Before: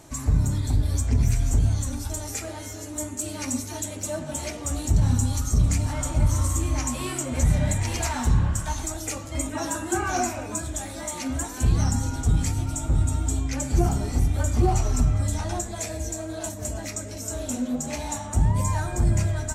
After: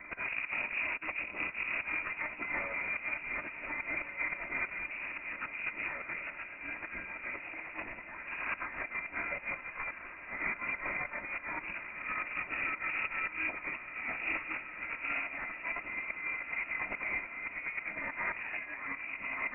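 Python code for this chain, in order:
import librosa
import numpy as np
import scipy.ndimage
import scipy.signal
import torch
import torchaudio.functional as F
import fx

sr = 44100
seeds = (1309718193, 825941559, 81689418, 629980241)

p1 = fx.lower_of_two(x, sr, delay_ms=2.9)
p2 = scipy.signal.sosfilt(scipy.signal.butter(2, 410.0, 'highpass', fs=sr, output='sos'), p1)
p3 = fx.notch(p2, sr, hz=1000.0, q=7.0)
p4 = fx.over_compress(p3, sr, threshold_db=-40.0, ratio=-0.5)
p5 = p4 + fx.echo_diffused(p4, sr, ms=1525, feedback_pct=62, wet_db=-10.0, dry=0)
p6 = fx.freq_invert(p5, sr, carrier_hz=2700)
y = F.gain(torch.from_numpy(p6), 2.5).numpy()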